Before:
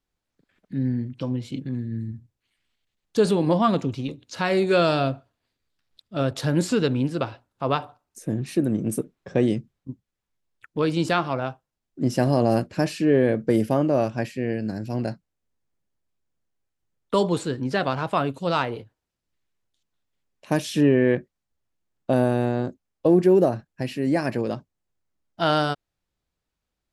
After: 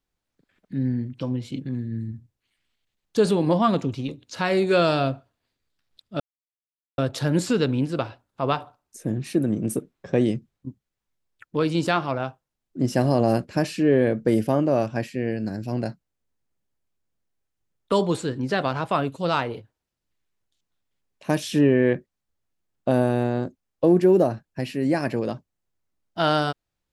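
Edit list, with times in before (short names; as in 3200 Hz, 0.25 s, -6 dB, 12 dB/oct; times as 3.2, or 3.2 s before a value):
6.2 insert silence 0.78 s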